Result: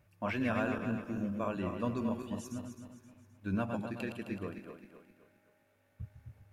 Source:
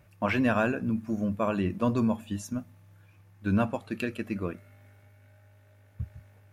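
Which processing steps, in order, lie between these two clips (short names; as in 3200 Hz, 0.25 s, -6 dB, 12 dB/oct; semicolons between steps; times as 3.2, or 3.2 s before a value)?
regenerating reverse delay 0.131 s, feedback 63%, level -5.5 dB; 4.54–6.01 bell 100 Hz -14.5 dB 0.77 oct; gain -8.5 dB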